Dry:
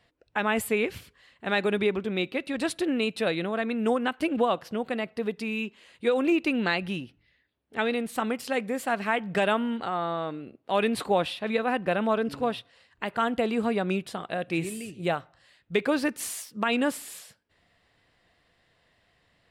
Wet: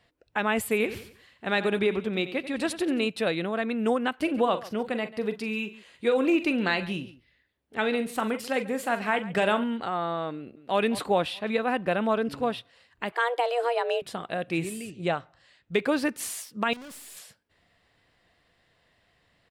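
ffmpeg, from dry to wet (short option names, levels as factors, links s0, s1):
-filter_complex "[0:a]asettb=1/sr,asplit=3[s0][s1][s2];[s0]atrim=end=0.624[s3];[s1]atrim=start=0.62:end=3.08,asetpts=PTS-STARTPTS,afade=t=in:d=0.004:c=qsin,afade=t=out:st=2.456:d=0.004:c=qsin,aecho=1:1:90|180|270|360:0.224|0.0851|0.0323|0.0123,atrim=end_sample=108486[s4];[s2]atrim=start=3.076[s5];[s3][s4]acrossfade=d=0.004:c1=hsin:c2=qsin[s6];[s6][s5]acrossfade=d=0.004:c1=qsin:c2=hsin,asettb=1/sr,asplit=3[s7][s8][s9];[s7]atrim=end=4.164[s10];[s8]atrim=start=4.16:end=9.64,asetpts=PTS-STARTPTS,afade=t=in:d=0.004:c=qsin,afade=t=out:st=5.476:d=0.004:c=qsin,aecho=1:1:42|44|139:0.251|0.15|0.133,atrim=end_sample=241668[s11];[s9]atrim=start=9.636[s12];[s10][s11]acrossfade=d=0.004:c1=hsin:c2=qsin[s13];[s13][s12]acrossfade=d=0.004:c1=qsin:c2=hsin,asplit=2[s14][s15];[s15]afade=t=in:st=10.35:d=0.01,afade=t=out:st=10.77:d=0.01,aecho=0:1:210|420|630|840|1050:0.199526|0.0997631|0.0498816|0.0249408|0.0124704[s16];[s14][s16]amix=inputs=2:normalize=0,asettb=1/sr,asplit=3[s17][s18][s19];[s17]atrim=end=13.124[s20];[s18]atrim=start=13.12:end=14.02,asetpts=PTS-STARTPTS,afade=t=in:d=0.004:c=qsin,afade=t=out:st=0.896:d=0.004:c=qsin,afreqshift=240[s21];[s19]atrim=start=14.016[s22];[s20][s21]acrossfade=d=0.004:c1=hsin:c2=qsin[s23];[s23][s22]acrossfade=d=0.004:c1=qsin:c2=hsin,asettb=1/sr,asplit=3[s24][s25][s26];[s24]atrim=end=14.904[s27];[s25]atrim=start=14.9:end=15.74,asetpts=PTS-STARTPTS,afade=t=in:d=0.004:c=qsin,afade=t=out:st=0.836:d=0.004:c=qsin,lowpass=f=8300:w=0.5412,lowpass=f=8300:w=1.3066[s28];[s26]atrim=start=15.736[s29];[s27][s28]acrossfade=d=0.004:c1=hsin:c2=qsin[s30];[s30][s29]acrossfade=d=0.004:c1=qsin:c2=hsin,asettb=1/sr,asplit=3[s31][s32][s33];[s31]atrim=end=16.734[s34];[s32]atrim=start=16.73:end=17.17,asetpts=PTS-STARTPTS,afade=t=in:d=0.004:c=qsin,afade=t=out:st=0.436:d=0.004:c=qsin,aeval=exprs='(tanh(126*val(0)+0.25)-tanh(0.25))/126':c=same[s35];[s33]atrim=start=17.166[s36];[s34][s35]acrossfade=d=0.004:c1=hsin:c2=qsin[s37];[s37][s36]acrossfade=d=0.004:c1=qsin:c2=hsin"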